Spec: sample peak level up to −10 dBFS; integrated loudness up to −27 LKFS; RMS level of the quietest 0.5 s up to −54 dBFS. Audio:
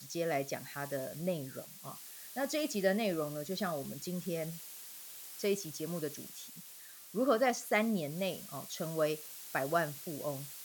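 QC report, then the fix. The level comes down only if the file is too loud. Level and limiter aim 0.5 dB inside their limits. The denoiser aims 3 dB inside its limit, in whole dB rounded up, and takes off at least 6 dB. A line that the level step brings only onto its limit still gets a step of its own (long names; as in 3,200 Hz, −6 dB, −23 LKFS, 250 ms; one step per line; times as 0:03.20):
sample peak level −16.5 dBFS: in spec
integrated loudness −36.0 LKFS: in spec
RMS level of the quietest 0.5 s −52 dBFS: out of spec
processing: broadband denoise 6 dB, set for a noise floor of −52 dBFS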